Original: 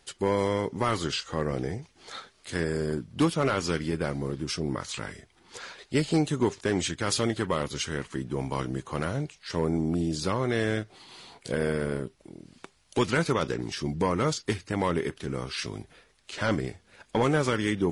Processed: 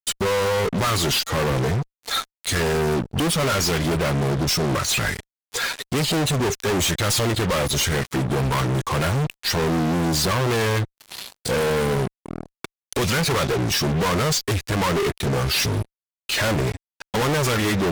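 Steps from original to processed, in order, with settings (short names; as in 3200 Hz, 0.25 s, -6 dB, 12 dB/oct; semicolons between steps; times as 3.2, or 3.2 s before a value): per-bin expansion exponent 1.5; dynamic EQ 240 Hz, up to -4 dB, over -39 dBFS, Q 1.5; sample leveller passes 1; in parallel at -3 dB: compressor, threshold -40 dBFS, peak gain reduction 17.5 dB; on the sum: fuzz box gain 46 dB, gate -55 dBFS; gain -6.5 dB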